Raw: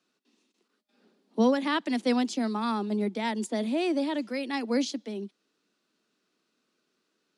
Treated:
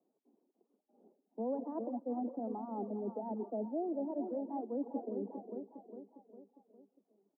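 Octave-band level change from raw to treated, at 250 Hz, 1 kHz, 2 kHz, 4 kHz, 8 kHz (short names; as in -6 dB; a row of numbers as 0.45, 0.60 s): -11.0 dB, -10.5 dB, under -40 dB, under -40 dB, under -35 dB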